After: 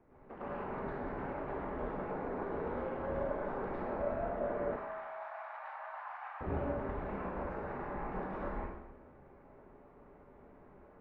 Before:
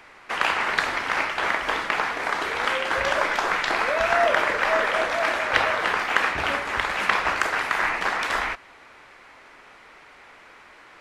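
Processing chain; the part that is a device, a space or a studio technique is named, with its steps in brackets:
television next door (downward compressor, threshold −24 dBFS, peak gain reduction 10 dB; low-pass filter 380 Hz 12 dB per octave; convolution reverb RT60 0.70 s, pre-delay 96 ms, DRR −8 dB)
0:04.76–0:06.41: Butterworth high-pass 760 Hz 48 dB per octave
four-comb reverb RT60 0.97 s, combs from 29 ms, DRR 8 dB
level −5.5 dB

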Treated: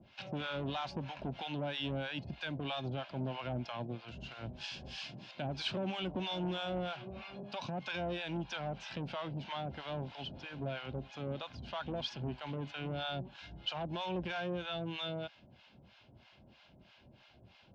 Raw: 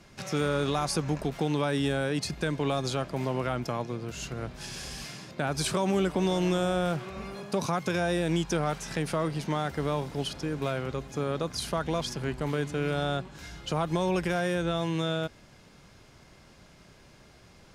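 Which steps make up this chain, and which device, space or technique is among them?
guitar amplifier with harmonic tremolo (two-band tremolo in antiphase 3.1 Hz, depth 100%, crossover 730 Hz; soft clipping −28.5 dBFS, distortion −12 dB; loudspeaker in its box 77–3,900 Hz, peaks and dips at 160 Hz −7 dB, 310 Hz −4 dB, 440 Hz −10 dB, 1,200 Hz −10 dB, 1,900 Hz −9 dB, 2,900 Hz +5 dB)
0:04.07–0:05.48: high-shelf EQ 6,200 Hz +10 dB
level +1.5 dB

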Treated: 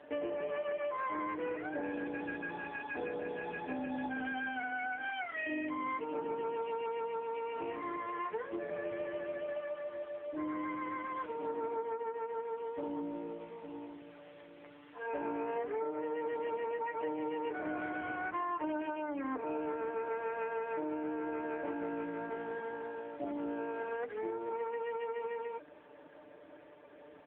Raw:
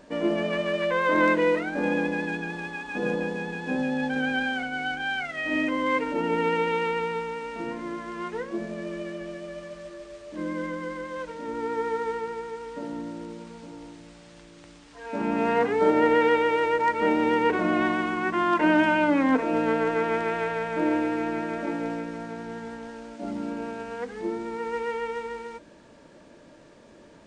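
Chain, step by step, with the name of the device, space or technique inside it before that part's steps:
comb filter 6.8 ms, depth 75%
dynamic equaliser 2,400 Hz, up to −4 dB, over −36 dBFS, Q 0.97
voicemail (band-pass filter 350–3,100 Hz; downward compressor 10 to 1, threshold −31 dBFS, peak gain reduction 17 dB; level −2 dB; AMR narrowband 6.7 kbit/s 8,000 Hz)

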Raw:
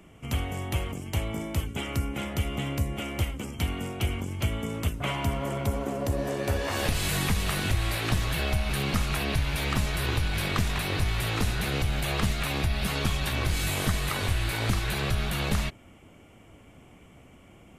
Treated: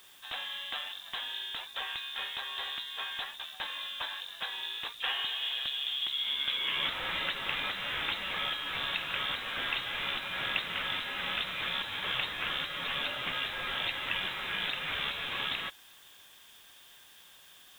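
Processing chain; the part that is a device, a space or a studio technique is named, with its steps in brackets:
scrambled radio voice (band-pass filter 390–2,900 Hz; voice inversion scrambler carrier 3,900 Hz; white noise bed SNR 23 dB)

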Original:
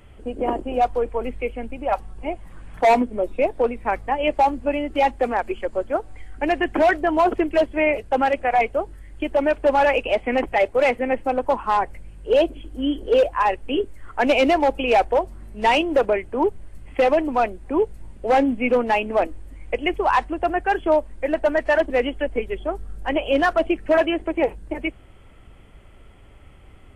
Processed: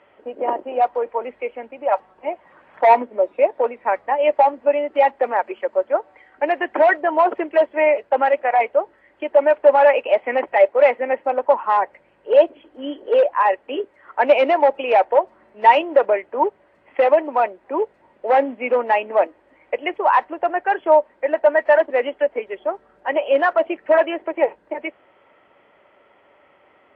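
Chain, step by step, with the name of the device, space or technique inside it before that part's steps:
tin-can telephone (band-pass filter 470–2,200 Hz; hollow resonant body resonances 580/920/1,900 Hz, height 7 dB)
level +2 dB

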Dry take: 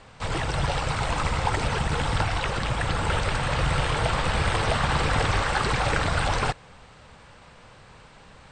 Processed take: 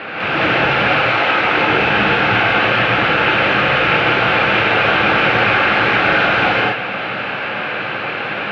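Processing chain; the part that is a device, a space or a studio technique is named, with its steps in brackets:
0:00.97–0:01.44: high-pass filter 350 Hz 24 dB per octave
overdrive pedal into a guitar cabinet (mid-hump overdrive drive 36 dB, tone 1,400 Hz, clips at −10.5 dBFS; loudspeaker in its box 110–3,900 Hz, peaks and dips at 210 Hz +4 dB, 310 Hz +7 dB, 1,000 Hz −8 dB, 1,500 Hz +7 dB, 2,500 Hz +10 dB)
reverb whose tail is shaped and stops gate 230 ms rising, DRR −5.5 dB
level −3 dB

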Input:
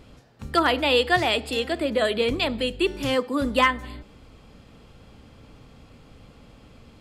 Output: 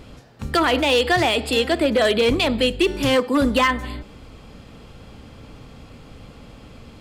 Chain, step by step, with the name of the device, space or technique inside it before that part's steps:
limiter into clipper (brickwall limiter −15 dBFS, peak gain reduction 5 dB; hard clipping −19 dBFS, distortion −18 dB)
level +7 dB

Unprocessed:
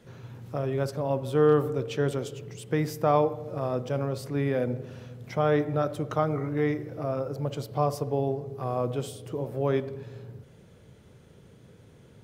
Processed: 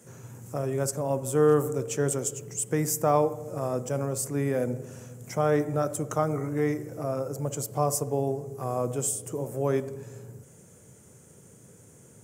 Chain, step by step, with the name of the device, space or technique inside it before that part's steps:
budget condenser microphone (high-pass filter 92 Hz; high shelf with overshoot 5,400 Hz +12 dB, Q 3)

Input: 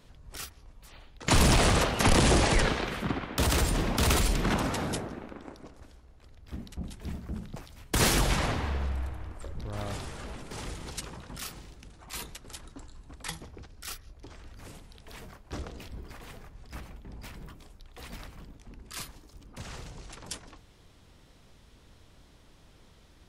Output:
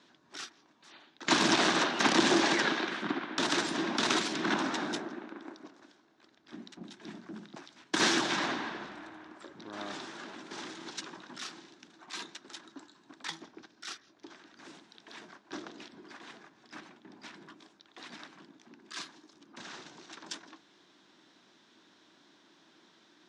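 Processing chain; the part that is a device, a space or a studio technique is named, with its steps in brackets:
television speaker (loudspeaker in its box 210–6,900 Hz, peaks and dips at 330 Hz +8 dB, 490 Hz −8 dB, 990 Hz +3 dB, 1,600 Hz +7 dB, 3,700 Hz +6 dB, 5,800 Hz +3 dB)
level −3 dB

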